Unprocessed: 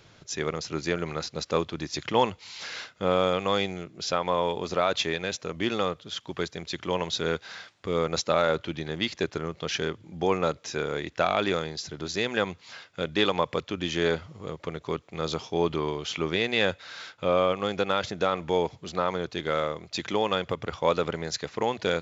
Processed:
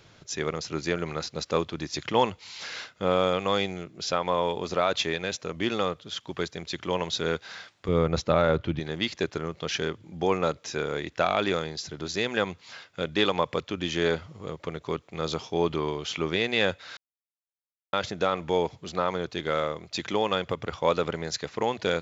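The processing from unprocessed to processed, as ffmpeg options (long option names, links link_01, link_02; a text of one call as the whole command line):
ffmpeg -i in.wav -filter_complex "[0:a]asettb=1/sr,asplit=3[link_01][link_02][link_03];[link_01]atrim=end=7.884[link_04];[link_02]atrim=start=7.88:end=8.8,asetpts=PTS-STARTPTS,afade=type=in:duration=0.004:curve=qsin,afade=type=out:start_time=0.916:duration=0.004:curve=qsin,aemphasis=mode=reproduction:type=bsi[link_05];[link_03]atrim=start=8.796[link_06];[link_04][link_05]acrossfade=duration=0.004:curve1=hsin:curve2=qsin[link_07];[link_07][link_06]acrossfade=duration=0.004:curve1=qsin:curve2=hsin,asplit=3[link_08][link_09][link_10];[link_08]atrim=end=16.97,asetpts=PTS-STARTPTS,afade=type=out:start_time=16.966:duration=0.004:curve=hsin[link_11];[link_09]atrim=start=16.97:end=17.93,asetpts=PTS-STARTPTS,volume=0[link_12];[link_10]atrim=start=17.93,asetpts=PTS-STARTPTS,afade=type=in:duration=0.004:curve=hsin[link_13];[link_11][link_12][link_13]concat=n=3:v=0:a=1" out.wav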